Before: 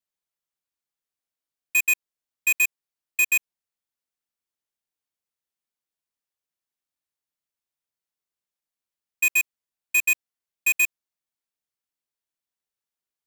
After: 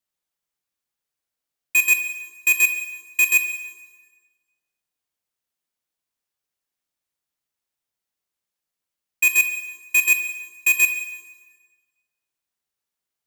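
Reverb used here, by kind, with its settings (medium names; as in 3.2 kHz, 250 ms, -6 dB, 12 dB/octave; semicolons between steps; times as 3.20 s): plate-style reverb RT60 1.4 s, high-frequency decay 0.85×, DRR 6 dB; trim +3.5 dB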